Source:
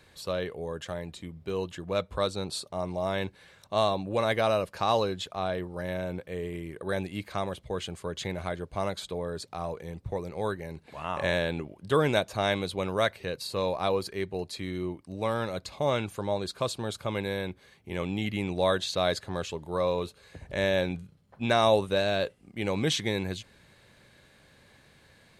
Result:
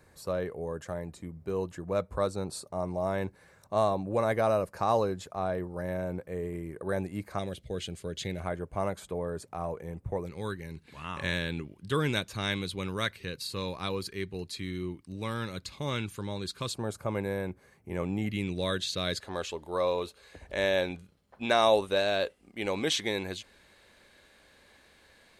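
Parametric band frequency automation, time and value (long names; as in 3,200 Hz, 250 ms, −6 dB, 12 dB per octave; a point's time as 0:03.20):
parametric band −14.5 dB 1 octave
3,300 Hz
from 0:07.39 1,000 Hz
from 0:08.40 4,000 Hz
from 0:10.26 670 Hz
from 0:16.74 3,500 Hz
from 0:18.31 780 Hz
from 0:19.20 130 Hz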